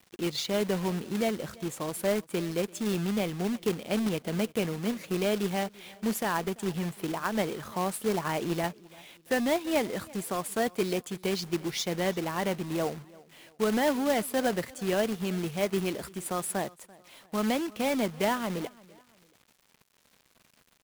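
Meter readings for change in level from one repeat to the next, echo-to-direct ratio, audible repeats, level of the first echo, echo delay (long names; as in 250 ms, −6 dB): −9.0 dB, −22.5 dB, 2, −23.0 dB, 339 ms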